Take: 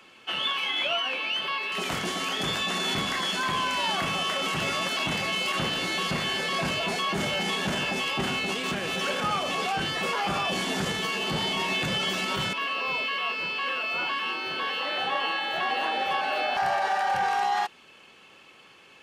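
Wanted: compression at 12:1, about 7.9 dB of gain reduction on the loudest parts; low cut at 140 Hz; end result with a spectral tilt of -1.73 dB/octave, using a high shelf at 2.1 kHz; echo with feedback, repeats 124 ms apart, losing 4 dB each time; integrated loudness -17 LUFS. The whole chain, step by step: high-pass 140 Hz; treble shelf 2.1 kHz +5 dB; compression 12:1, threshold -29 dBFS; feedback delay 124 ms, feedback 63%, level -4 dB; trim +12.5 dB

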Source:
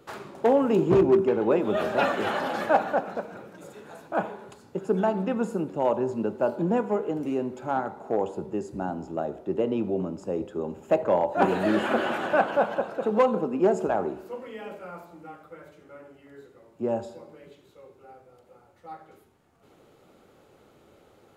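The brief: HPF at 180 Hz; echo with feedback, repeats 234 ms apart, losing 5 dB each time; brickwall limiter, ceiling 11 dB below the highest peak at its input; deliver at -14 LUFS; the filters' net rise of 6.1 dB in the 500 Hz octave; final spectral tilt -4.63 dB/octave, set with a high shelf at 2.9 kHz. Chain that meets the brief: high-pass 180 Hz; peaking EQ 500 Hz +7.5 dB; treble shelf 2.9 kHz +6 dB; peak limiter -14 dBFS; feedback delay 234 ms, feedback 56%, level -5 dB; trim +9.5 dB

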